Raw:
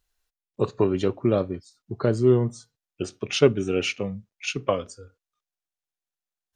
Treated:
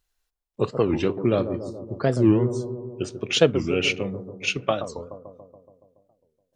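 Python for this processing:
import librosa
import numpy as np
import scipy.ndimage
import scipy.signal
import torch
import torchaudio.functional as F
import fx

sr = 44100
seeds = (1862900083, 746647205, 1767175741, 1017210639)

p1 = fx.dynamic_eq(x, sr, hz=2700.0, q=1.1, threshold_db=-42.0, ratio=4.0, max_db=5)
p2 = p1 + fx.echo_bbd(p1, sr, ms=141, stages=1024, feedback_pct=66, wet_db=-10, dry=0)
y = fx.record_warp(p2, sr, rpm=45.0, depth_cents=250.0)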